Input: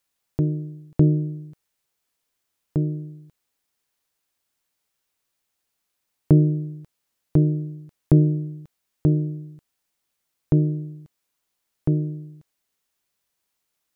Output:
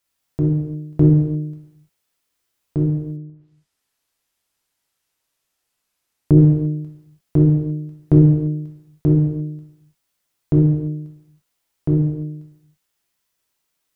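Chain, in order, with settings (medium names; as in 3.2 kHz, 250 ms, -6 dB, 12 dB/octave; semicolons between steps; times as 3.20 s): gated-style reverb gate 370 ms falling, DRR -2.5 dB; 3.16–6.38 s: low-pass that closes with the level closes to 710 Hz, closed at -31.5 dBFS; trim -1 dB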